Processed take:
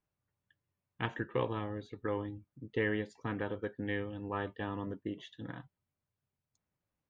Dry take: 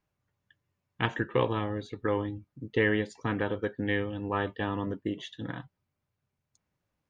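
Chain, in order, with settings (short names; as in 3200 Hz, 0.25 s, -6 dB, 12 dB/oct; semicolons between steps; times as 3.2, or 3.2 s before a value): high shelf 4400 Hz -6.5 dB; gain -6.5 dB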